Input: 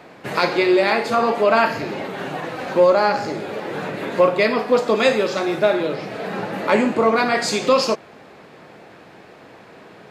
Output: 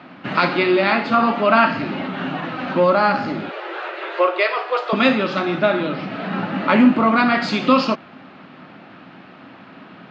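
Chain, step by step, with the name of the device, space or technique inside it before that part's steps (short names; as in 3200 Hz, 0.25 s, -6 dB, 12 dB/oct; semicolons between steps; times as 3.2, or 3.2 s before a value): 3.49–4.93 Chebyshev high-pass 340 Hz, order 8; guitar cabinet (speaker cabinet 97–4400 Hz, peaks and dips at 100 Hz +4 dB, 180 Hz +7 dB, 260 Hz +10 dB, 450 Hz -10 dB, 1300 Hz +7 dB, 2900 Hz +5 dB)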